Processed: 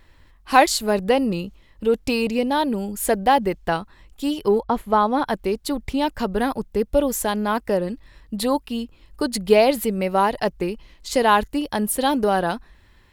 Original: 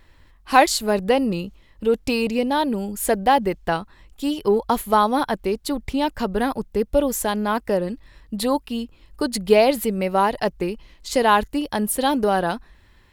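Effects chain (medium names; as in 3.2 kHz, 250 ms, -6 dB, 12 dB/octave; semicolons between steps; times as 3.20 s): 4.61–5.25 s: low-pass 1.1 kHz -> 2.8 kHz 6 dB/octave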